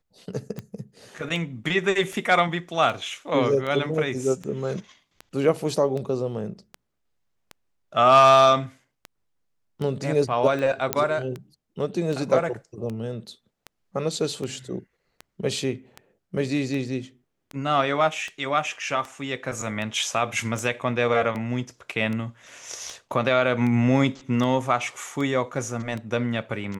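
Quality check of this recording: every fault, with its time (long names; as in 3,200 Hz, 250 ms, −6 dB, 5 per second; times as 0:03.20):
scratch tick 78 rpm −20 dBFS
0:10.93: click −4 dBFS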